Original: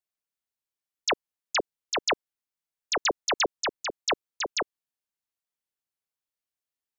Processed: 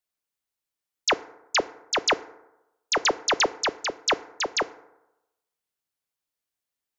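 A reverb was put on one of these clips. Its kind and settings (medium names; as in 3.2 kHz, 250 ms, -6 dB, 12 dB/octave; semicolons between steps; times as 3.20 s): FDN reverb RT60 0.96 s, low-frequency decay 0.85×, high-frequency decay 0.4×, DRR 15 dB; trim +3.5 dB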